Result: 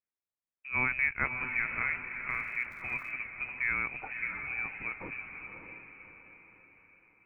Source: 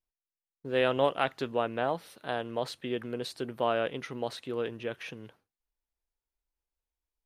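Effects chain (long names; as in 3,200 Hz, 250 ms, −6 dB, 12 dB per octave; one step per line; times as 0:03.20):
high-pass filter 210 Hz 12 dB per octave
voice inversion scrambler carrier 2,800 Hz
high-frequency loss of the air 310 metres
feedback delay with all-pass diffusion 599 ms, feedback 44%, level −6.5 dB
0:02.27–0:03.10: surface crackle 140 per second −48 dBFS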